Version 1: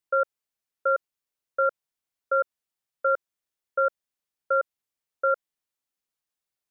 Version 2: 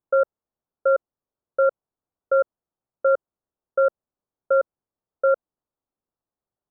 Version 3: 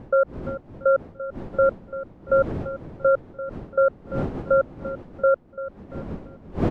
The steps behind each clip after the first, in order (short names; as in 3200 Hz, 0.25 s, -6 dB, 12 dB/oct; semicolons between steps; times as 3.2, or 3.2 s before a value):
Bessel low-pass 790 Hz, order 8; gain +8.5 dB
wind noise 320 Hz -34 dBFS; feedback echo 0.341 s, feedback 36%, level -14 dB